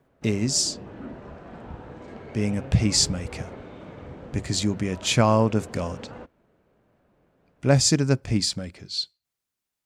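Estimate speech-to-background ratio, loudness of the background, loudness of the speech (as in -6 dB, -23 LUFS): 17.0 dB, -40.5 LUFS, -23.5 LUFS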